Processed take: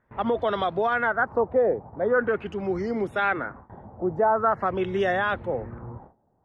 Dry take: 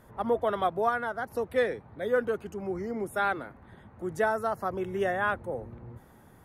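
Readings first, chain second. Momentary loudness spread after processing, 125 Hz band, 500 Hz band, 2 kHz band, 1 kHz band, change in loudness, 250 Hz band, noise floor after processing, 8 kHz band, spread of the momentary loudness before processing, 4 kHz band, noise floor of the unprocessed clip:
9 LU, +5.5 dB, +5.0 dB, +5.5 dB, +5.0 dB, +5.0 dB, +5.5 dB, -68 dBFS, no reading, 11 LU, +5.5 dB, -56 dBFS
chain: gate with hold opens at -42 dBFS; peak limiter -22 dBFS, peak gain reduction 8 dB; LFO low-pass sine 0.44 Hz 720–4400 Hz; trim +6 dB

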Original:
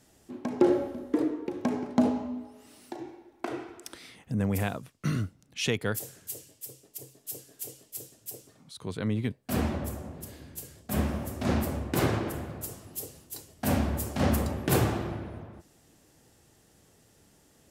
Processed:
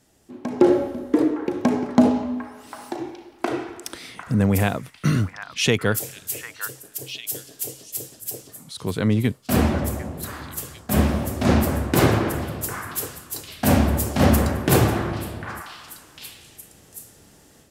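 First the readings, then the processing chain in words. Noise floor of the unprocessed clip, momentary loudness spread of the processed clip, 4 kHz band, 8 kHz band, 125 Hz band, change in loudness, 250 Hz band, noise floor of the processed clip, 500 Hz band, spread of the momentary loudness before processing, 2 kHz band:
-62 dBFS, 18 LU, +9.5 dB, +9.0 dB, +9.0 dB, +8.0 dB, +8.5 dB, -52 dBFS, +8.0 dB, 17 LU, +9.5 dB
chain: level rider gain up to 9.5 dB; on a send: repeats whose band climbs or falls 750 ms, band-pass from 1.4 kHz, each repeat 1.4 oct, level -6 dB

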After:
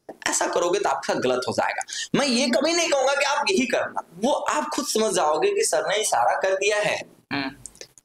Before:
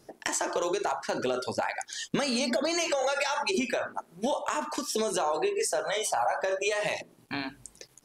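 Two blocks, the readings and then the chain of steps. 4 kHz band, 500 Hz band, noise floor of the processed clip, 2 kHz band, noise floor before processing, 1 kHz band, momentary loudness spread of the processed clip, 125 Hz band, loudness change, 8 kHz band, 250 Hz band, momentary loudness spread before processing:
+7.0 dB, +7.0 dB, -57 dBFS, +7.0 dB, -62 dBFS, +7.0 dB, 8 LU, +7.0 dB, +7.0 dB, +7.0 dB, +7.0 dB, 8 LU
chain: gate -55 dBFS, range -18 dB; trim +7 dB

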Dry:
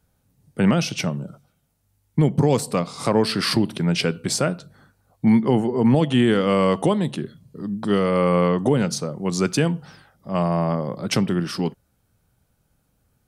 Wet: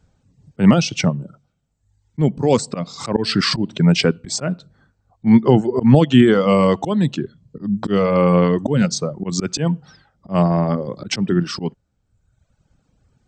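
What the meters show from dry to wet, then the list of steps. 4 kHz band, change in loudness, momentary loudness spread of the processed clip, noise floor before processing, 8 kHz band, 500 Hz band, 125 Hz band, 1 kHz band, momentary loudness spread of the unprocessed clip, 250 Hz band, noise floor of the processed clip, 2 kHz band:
+3.0 dB, +3.5 dB, 14 LU, -68 dBFS, +2.0 dB, +3.0 dB, +4.0 dB, +2.0 dB, 10 LU, +4.0 dB, -68 dBFS, +2.5 dB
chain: brick-wall FIR low-pass 8.3 kHz; bass shelf 400 Hz +5 dB; reverb removal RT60 1 s; slow attack 129 ms; trim +4.5 dB

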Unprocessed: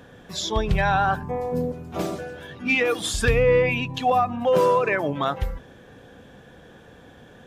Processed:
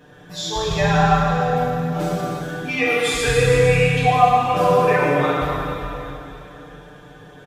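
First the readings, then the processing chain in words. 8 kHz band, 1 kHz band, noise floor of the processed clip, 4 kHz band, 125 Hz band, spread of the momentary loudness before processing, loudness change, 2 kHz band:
+4.0 dB, +6.0 dB, -44 dBFS, +4.5 dB, +7.5 dB, 12 LU, +4.5 dB, +4.0 dB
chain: comb 6.7 ms, depth 85%; plate-style reverb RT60 3.2 s, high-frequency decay 0.95×, DRR -7 dB; trim -5.5 dB

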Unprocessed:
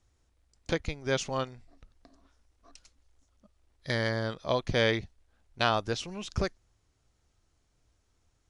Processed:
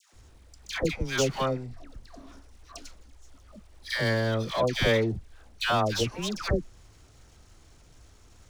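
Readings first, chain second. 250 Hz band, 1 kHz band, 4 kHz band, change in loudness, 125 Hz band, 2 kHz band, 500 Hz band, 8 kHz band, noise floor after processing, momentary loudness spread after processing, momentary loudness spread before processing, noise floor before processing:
+4.5 dB, +2.5 dB, +3.5 dB, +3.0 dB, +4.5 dB, +3.0 dB, +3.5 dB, +6.5 dB, -56 dBFS, 17 LU, 9 LU, -73 dBFS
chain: power-law waveshaper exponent 0.7; phase dispersion lows, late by 136 ms, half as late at 920 Hz; trim -1 dB

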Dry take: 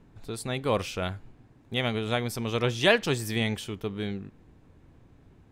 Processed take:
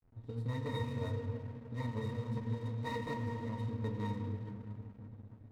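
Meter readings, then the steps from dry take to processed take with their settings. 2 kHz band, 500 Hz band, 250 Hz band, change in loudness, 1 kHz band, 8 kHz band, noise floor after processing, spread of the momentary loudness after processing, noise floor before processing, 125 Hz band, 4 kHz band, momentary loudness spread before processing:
-18.0 dB, -14.0 dB, -8.0 dB, -11.0 dB, -9.5 dB, under -20 dB, -57 dBFS, 10 LU, -58 dBFS, -3.0 dB, -21.0 dB, 14 LU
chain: integer overflow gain 22 dB; band-stop 3.5 kHz, Q 5.7; pitch-class resonator A#, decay 0.14 s; compressor with a negative ratio -43 dBFS, ratio -1; simulated room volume 220 m³, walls hard, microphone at 0.4 m; hysteresis with a dead band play -52.5 dBFS; trim +3.5 dB

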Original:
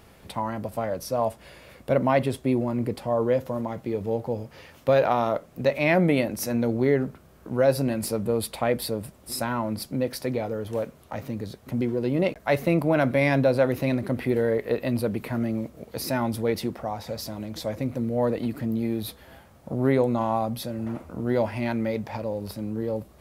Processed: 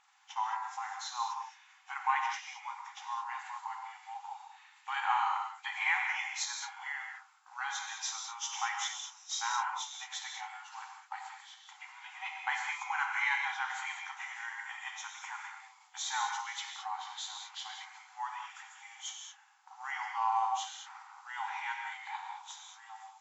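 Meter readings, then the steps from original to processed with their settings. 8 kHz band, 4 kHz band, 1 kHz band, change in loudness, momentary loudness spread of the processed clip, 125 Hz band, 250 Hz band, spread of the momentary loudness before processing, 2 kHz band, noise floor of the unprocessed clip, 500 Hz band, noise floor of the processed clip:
-0.5 dB, -1.5 dB, -3.0 dB, -10.5 dB, 17 LU, under -40 dB, under -40 dB, 11 LU, -2.0 dB, -53 dBFS, under -40 dB, -62 dBFS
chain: knee-point frequency compression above 2.1 kHz 1.5:1; gate -41 dBFS, range -7 dB; FFT band-pass 750–7700 Hz; gated-style reverb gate 240 ms flat, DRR 1.5 dB; trim -3.5 dB

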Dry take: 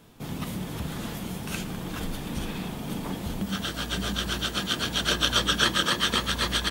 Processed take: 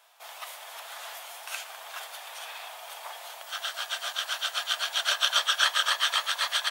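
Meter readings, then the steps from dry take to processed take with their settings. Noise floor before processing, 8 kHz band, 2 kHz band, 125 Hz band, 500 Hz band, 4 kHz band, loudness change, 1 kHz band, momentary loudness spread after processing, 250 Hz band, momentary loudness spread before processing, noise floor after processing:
-37 dBFS, -1.0 dB, 0.0 dB, under -40 dB, -8.5 dB, -0.5 dB, +0.5 dB, -0.5 dB, 17 LU, under -40 dB, 12 LU, -45 dBFS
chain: elliptic high-pass 650 Hz, stop band 60 dB

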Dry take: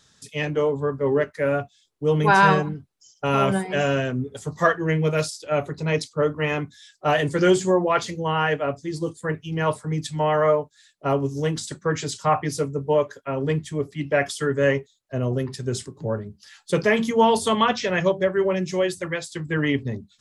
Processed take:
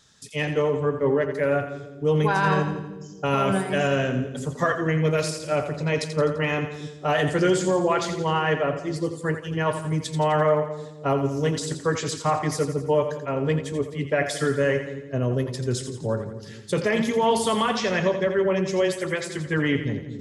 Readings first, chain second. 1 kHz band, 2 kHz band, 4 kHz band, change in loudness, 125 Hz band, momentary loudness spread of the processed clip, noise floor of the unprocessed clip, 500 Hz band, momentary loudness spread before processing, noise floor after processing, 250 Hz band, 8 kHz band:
-2.5 dB, -2.0 dB, -0.5 dB, -1.0 dB, 0.0 dB, 7 LU, -62 dBFS, -1.0 dB, 10 LU, -40 dBFS, -0.5 dB, +0.5 dB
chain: peak limiter -13 dBFS, peak gain reduction 9 dB; on a send: two-band feedback delay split 420 Hz, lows 221 ms, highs 85 ms, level -9 dB

